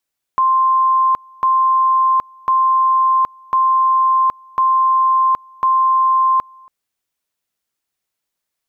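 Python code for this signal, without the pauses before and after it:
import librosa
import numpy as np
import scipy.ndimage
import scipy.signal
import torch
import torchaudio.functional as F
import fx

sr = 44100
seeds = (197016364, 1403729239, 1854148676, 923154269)

y = fx.two_level_tone(sr, hz=1050.0, level_db=-10.5, drop_db=29.0, high_s=0.77, low_s=0.28, rounds=6)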